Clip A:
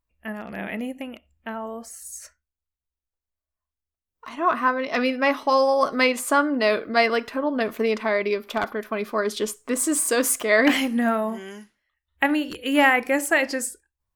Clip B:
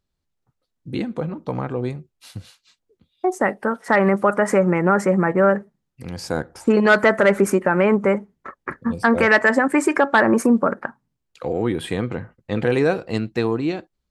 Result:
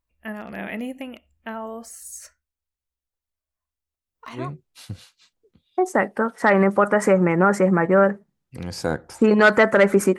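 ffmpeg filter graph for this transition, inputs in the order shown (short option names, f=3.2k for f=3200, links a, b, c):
-filter_complex "[0:a]apad=whole_dur=10.18,atrim=end=10.18,atrim=end=4.5,asetpts=PTS-STARTPTS[a];[1:a]atrim=start=1.78:end=7.64,asetpts=PTS-STARTPTS[b];[a][b]acrossfade=d=0.18:c1=tri:c2=tri"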